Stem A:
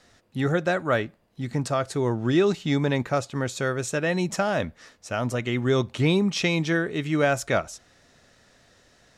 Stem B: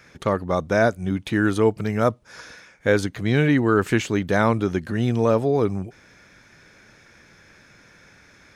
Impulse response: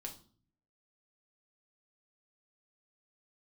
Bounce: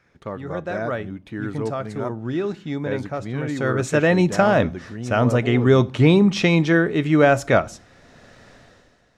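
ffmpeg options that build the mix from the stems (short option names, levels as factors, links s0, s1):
-filter_complex "[0:a]dynaudnorm=f=100:g=11:m=5.62,volume=0.631,afade=t=in:st=3.47:d=0.45:silence=0.281838,asplit=2[s0][s1];[s1]volume=0.335[s2];[1:a]volume=0.316,asplit=2[s3][s4];[s4]volume=0.211[s5];[2:a]atrim=start_sample=2205[s6];[s2][s5]amix=inputs=2:normalize=0[s7];[s7][s6]afir=irnorm=-1:irlink=0[s8];[s0][s3][s8]amix=inputs=3:normalize=0,highshelf=f=3400:g=-11"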